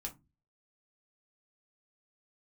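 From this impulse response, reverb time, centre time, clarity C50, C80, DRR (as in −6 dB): 0.25 s, 10 ms, 16.5 dB, 26.5 dB, 0.5 dB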